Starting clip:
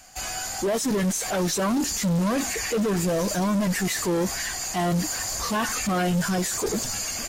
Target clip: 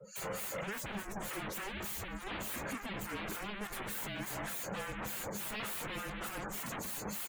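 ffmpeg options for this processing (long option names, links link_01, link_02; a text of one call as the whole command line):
ffmpeg -i in.wav -filter_complex "[0:a]aecho=1:1:211:0.335,aeval=exprs='(tanh(31.6*val(0)+0.2)-tanh(0.2))/31.6':channel_layout=same,acrossover=split=1400[link_01][link_02];[link_01]aeval=exprs='val(0)*(1-1/2+1/2*cos(2*PI*3.4*n/s))':channel_layout=same[link_03];[link_02]aeval=exprs='val(0)*(1-1/2-1/2*cos(2*PI*3.4*n/s))':channel_layout=same[link_04];[link_03][link_04]amix=inputs=2:normalize=0,aeval=exprs='0.01*(abs(mod(val(0)/0.01+3,4)-2)-1)':channel_layout=same,afreqshift=-210,lowshelf=frequency=120:gain=-8.5,afftdn=noise_reduction=24:noise_floor=-55,equalizer=frequency=5300:width=1.4:gain=-9.5,volume=7.5dB" out.wav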